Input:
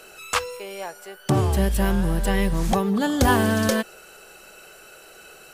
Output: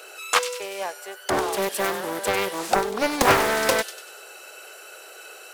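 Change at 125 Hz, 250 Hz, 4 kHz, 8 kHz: -15.5 dB, -9.0 dB, +3.5 dB, +3.0 dB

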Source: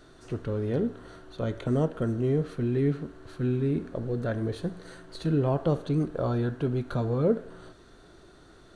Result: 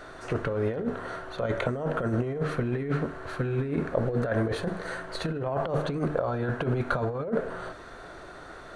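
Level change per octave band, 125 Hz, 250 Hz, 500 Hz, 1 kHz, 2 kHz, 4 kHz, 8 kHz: -2.0 dB, -2.5 dB, +0.5 dB, +5.5 dB, +9.5 dB, +4.5 dB, no reading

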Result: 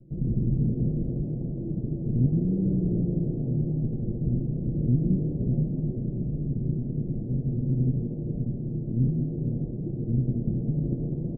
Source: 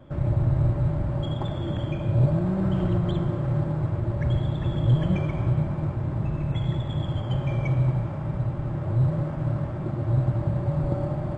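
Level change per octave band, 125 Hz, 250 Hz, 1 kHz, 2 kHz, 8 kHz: -3.0 dB, +1.5 dB, under -20 dB, under -40 dB, no reading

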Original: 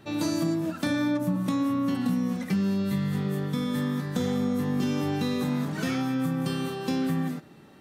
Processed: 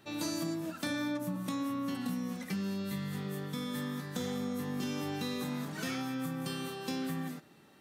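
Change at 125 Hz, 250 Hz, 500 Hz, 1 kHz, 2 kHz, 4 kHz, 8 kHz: -10.5 dB, -9.5 dB, -8.0 dB, -6.5 dB, -5.0 dB, -3.5 dB, -2.0 dB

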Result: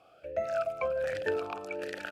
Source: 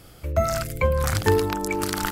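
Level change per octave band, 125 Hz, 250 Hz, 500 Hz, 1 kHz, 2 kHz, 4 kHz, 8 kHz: -27.0 dB, -17.5 dB, -6.5 dB, -11.0 dB, -8.0 dB, -15.5 dB, under -20 dB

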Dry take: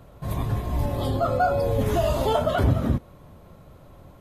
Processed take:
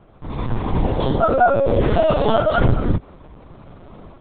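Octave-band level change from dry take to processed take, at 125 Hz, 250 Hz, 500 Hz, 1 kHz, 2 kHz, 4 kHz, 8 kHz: +2.5 dB, +6.0 dB, +6.5 dB, +6.5 dB, +7.5 dB, +4.0 dB, under -30 dB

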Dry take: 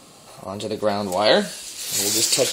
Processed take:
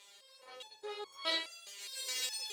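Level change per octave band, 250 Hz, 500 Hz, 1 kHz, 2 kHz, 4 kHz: -29.0 dB, -26.0 dB, -21.0 dB, -14.5 dB, -14.0 dB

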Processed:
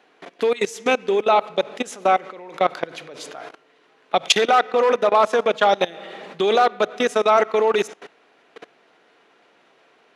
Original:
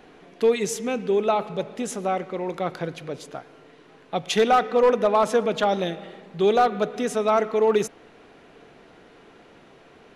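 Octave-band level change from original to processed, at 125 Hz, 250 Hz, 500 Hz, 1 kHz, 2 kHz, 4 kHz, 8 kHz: no reading, -2.0 dB, +2.0 dB, +4.5 dB, +7.0 dB, +8.0 dB, +2.5 dB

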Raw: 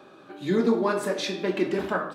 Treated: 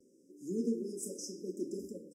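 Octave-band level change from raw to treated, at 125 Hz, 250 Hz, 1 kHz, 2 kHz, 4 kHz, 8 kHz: -14.5 dB, -11.0 dB, under -40 dB, under -40 dB, -18.5 dB, -2.0 dB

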